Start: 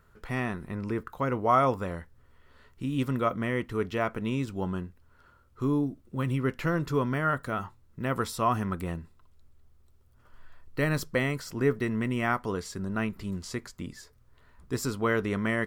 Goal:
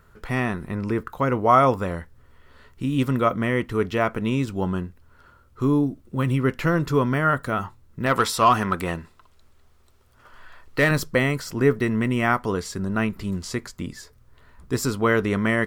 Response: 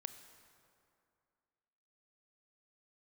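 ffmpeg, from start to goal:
-filter_complex "[0:a]asettb=1/sr,asplit=3[link_01][link_02][link_03];[link_01]atrim=end=8.064[link_04];[link_02]atrim=start=8.06:end=10.91,asetpts=PTS-STARTPTS,afade=type=in:duration=0.004:curve=qsin,afade=type=out:start_time=2.846:duration=0.004:curve=qsin,asplit=2[link_05][link_06];[link_06]highpass=frequency=720:poles=1,volume=12dB,asoftclip=type=tanh:threshold=-13.5dB[link_07];[link_05][link_07]amix=inputs=2:normalize=0,lowpass=frequency=6200:poles=1,volume=-6dB[link_08];[link_03]atrim=start=10.906[link_09];[link_04][link_08]acrossfade=duration=0.004:curve1=hsin:curve2=qsin[link_10];[link_10][link_09]acrossfade=duration=0.004:curve1=qsin:curve2=hsin,volume=6.5dB"

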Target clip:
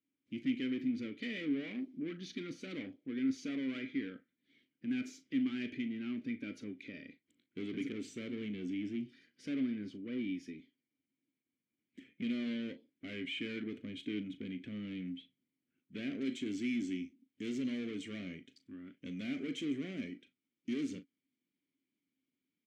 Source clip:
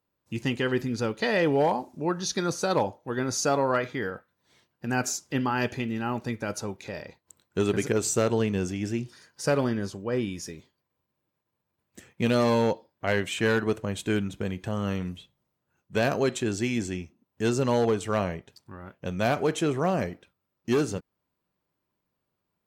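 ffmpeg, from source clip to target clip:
ffmpeg -i in.wav -filter_complex "[0:a]asetnsamples=nb_out_samples=441:pad=0,asendcmd='16.21 equalizer g 8.5',equalizer=frequency=7200:width=0.91:gain=-5.5,asoftclip=type=tanh:threshold=-29dB,asplit=3[link_01][link_02][link_03];[link_01]bandpass=frequency=270:width_type=q:width=8,volume=0dB[link_04];[link_02]bandpass=frequency=2290:width_type=q:width=8,volume=-6dB[link_05];[link_03]bandpass=frequency=3010:width_type=q:width=8,volume=-9dB[link_06];[link_04][link_05][link_06]amix=inputs=3:normalize=0,asplit=2[link_07][link_08];[link_08]adelay=38,volume=-13dB[link_09];[link_07][link_09]amix=inputs=2:normalize=0,volume=5.5dB" out.wav

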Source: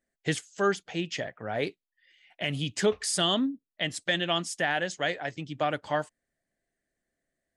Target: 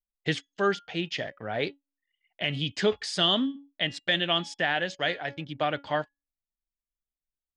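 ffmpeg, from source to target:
ffmpeg -i in.wav -af "lowpass=frequency=4000:width_type=q:width=1.5,bandreject=frequency=280.9:width_type=h:width=4,bandreject=frequency=561.8:width_type=h:width=4,bandreject=frequency=842.7:width_type=h:width=4,bandreject=frequency=1123.6:width_type=h:width=4,bandreject=frequency=1404.5:width_type=h:width=4,bandreject=frequency=1685.4:width_type=h:width=4,bandreject=frequency=1966.3:width_type=h:width=4,bandreject=frequency=2247.2:width_type=h:width=4,bandreject=frequency=2528.1:width_type=h:width=4,bandreject=frequency=2809:width_type=h:width=4,bandreject=frequency=3089.9:width_type=h:width=4,bandreject=frequency=3370.8:width_type=h:width=4,bandreject=frequency=3651.7:width_type=h:width=4,bandreject=frequency=3932.6:width_type=h:width=4,bandreject=frequency=4213.5:width_type=h:width=4,bandreject=frequency=4494.4:width_type=h:width=4,bandreject=frequency=4775.3:width_type=h:width=4,bandreject=frequency=5056.2:width_type=h:width=4,bandreject=frequency=5337.1:width_type=h:width=4,bandreject=frequency=5618:width_type=h:width=4,bandreject=frequency=5898.9:width_type=h:width=4,bandreject=frequency=6179.8:width_type=h:width=4,bandreject=frequency=6460.7:width_type=h:width=4,bandreject=frequency=6741.6:width_type=h:width=4,bandreject=frequency=7022.5:width_type=h:width=4,bandreject=frequency=7303.4:width_type=h:width=4,bandreject=frequency=7584.3:width_type=h:width=4,anlmdn=0.0158" out.wav

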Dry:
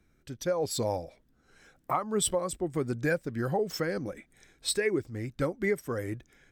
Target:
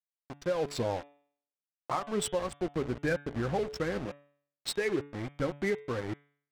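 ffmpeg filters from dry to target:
ffmpeg -i in.wav -filter_complex "[0:a]asettb=1/sr,asplit=3[link_01][link_02][link_03];[link_01]atrim=end=2.404[link_04];[link_02]atrim=start=2.4:end=4.07,asetpts=PTS-STARTPTS,afade=type=in:duration=0.004:curve=qsin,afade=type=out:start_time=1.666:duration=0.004:curve=qsin,aeval=exprs='val(0)+0.00501*(sin(2*PI*60*n/s)+sin(2*PI*2*60*n/s)/2+sin(2*PI*3*60*n/s)/3+sin(2*PI*4*60*n/s)/4+sin(2*PI*5*60*n/s)/5)':channel_layout=same[link_05];[link_03]atrim=start=4.066[link_06];[link_04][link_05]acrossfade=duration=0.004:curve1=hsin:curve2=qsin[link_07];[link_07][link_06]acrossfade=duration=0.004:curve1=qsin:curve2=hsin,asplit=2[link_08][link_09];[link_09]alimiter=limit=-22.5dB:level=0:latency=1:release=133,volume=-3dB[link_10];[link_08][link_10]amix=inputs=2:normalize=0,aeval=exprs='val(0)*gte(abs(val(0)),0.0316)':channel_layout=same,adynamicsmooth=sensitivity=4.5:basefreq=1900,bandreject=frequency=143.5:width_type=h:width=4,bandreject=frequency=287:width_type=h:width=4,bandreject=frequency=430.5:width_type=h:width=4,bandreject=frequency=574:width_type=h:width=4,bandreject=frequency=717.5:width_type=h:width=4,bandreject=frequency=861:width_type=h:width=4,bandreject=frequency=1004.5:width_type=h:width=4,bandreject=frequency=1148:width_type=h:width=4,bandreject=frequency=1291.5:width_type=h:width=4,bandreject=frequency=1435:width_type=h:width=4,bandreject=frequency=1578.5:width_type=h:width=4,bandreject=frequency=1722:width_type=h:width=4,bandreject=frequency=1865.5:width_type=h:width=4,bandreject=frequency=2009:width_type=h:width=4,bandreject=frequency=2152.5:width_type=h:width=4,bandreject=frequency=2296:width_type=h:width=4,bandreject=frequency=2439.5:width_type=h:width=4,bandreject=frequency=2583:width_type=h:width=4,bandreject=frequency=2726.5:width_type=h:width=4,bandreject=frequency=2870:width_type=h:width=4,bandreject=frequency=3013.5:width_type=h:width=4,bandreject=frequency=3157:width_type=h:width=4,bandreject=frequency=3300.5:width_type=h:width=4,bandreject=frequency=3444:width_type=h:width=4,bandreject=frequency=3587.5:width_type=h:width=4,bandreject=frequency=3731:width_type=h:width=4,volume=-5dB" out.wav

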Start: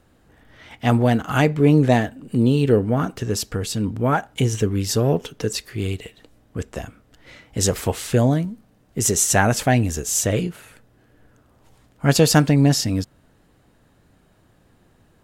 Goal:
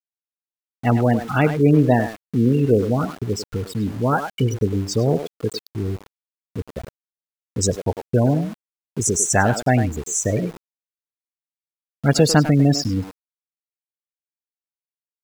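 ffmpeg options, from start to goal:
ffmpeg -i in.wav -filter_complex "[0:a]afftfilt=real='re*gte(hypot(re,im),0.112)':imag='im*gte(hypot(re,im),0.112)':win_size=1024:overlap=0.75,asplit=2[link_01][link_02];[link_02]adelay=100,highpass=300,lowpass=3400,asoftclip=type=hard:threshold=-11.5dB,volume=-8dB[link_03];[link_01][link_03]amix=inputs=2:normalize=0,aeval=exprs='val(0)*gte(abs(val(0)),0.02)':channel_layout=same" out.wav

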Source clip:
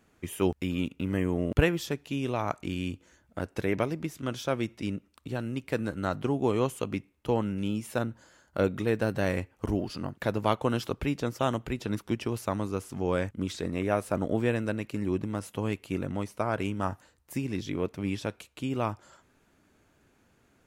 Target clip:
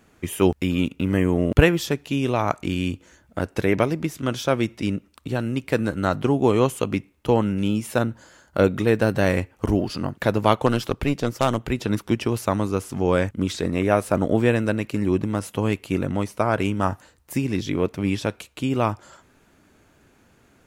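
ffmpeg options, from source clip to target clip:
ffmpeg -i in.wav -filter_complex "[0:a]asettb=1/sr,asplit=3[link_01][link_02][link_03];[link_01]atrim=end=10.664[link_04];[link_02]atrim=start=10.66:end=11.68,asetpts=PTS-STARTPTS,afade=type=in:duration=0.004:curve=qsin,afade=type=out:start_time=1.016:duration=0.004:curve=qsin,aeval=exprs='0.224*(cos(1*acos(clip(val(0)/0.224,-1,1)))-cos(1*PI/2))+0.0178*(cos(3*acos(clip(val(0)/0.224,-1,1)))-cos(3*PI/2))+0.0251*(cos(4*acos(clip(val(0)/0.224,-1,1)))-cos(4*PI/2))+0.0282*(cos(6*acos(clip(val(0)/0.224,-1,1)))-cos(6*PI/2))':channel_layout=same[link_05];[link_03]atrim=start=11.676[link_06];[link_04][link_05]acrossfade=duration=0.004:curve1=hsin:curve2=qsin[link_07];[link_07][link_06]acrossfade=duration=0.004:curve1=qsin:curve2=hsin,volume=8dB" out.wav

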